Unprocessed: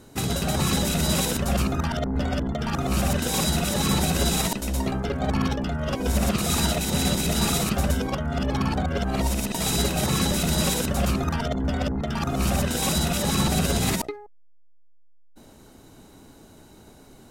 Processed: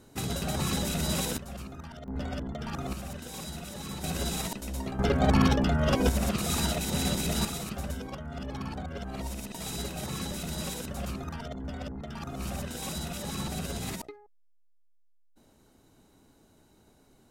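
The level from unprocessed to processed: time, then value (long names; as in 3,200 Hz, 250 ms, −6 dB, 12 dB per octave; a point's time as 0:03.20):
−6.5 dB
from 0:01.38 −17.5 dB
from 0:02.08 −9 dB
from 0:02.93 −16 dB
from 0:04.04 −9 dB
from 0:04.99 +2 dB
from 0:06.09 −5.5 dB
from 0:07.45 −12 dB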